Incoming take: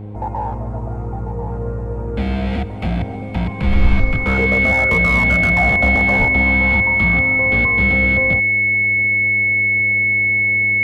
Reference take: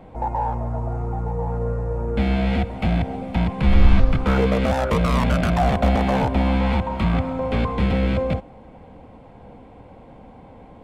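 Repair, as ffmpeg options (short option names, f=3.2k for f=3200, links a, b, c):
-filter_complex "[0:a]bandreject=f=103.8:t=h:w=4,bandreject=f=207.6:t=h:w=4,bandreject=f=311.4:t=h:w=4,bandreject=f=415.2:t=h:w=4,bandreject=f=519:t=h:w=4,bandreject=f=2.2k:w=30,asplit=3[a][b][c];[a]afade=t=out:st=6.18:d=0.02[d];[b]highpass=f=140:w=0.5412,highpass=f=140:w=1.3066,afade=t=in:st=6.18:d=0.02,afade=t=out:st=6.3:d=0.02[e];[c]afade=t=in:st=6.3:d=0.02[f];[d][e][f]amix=inputs=3:normalize=0"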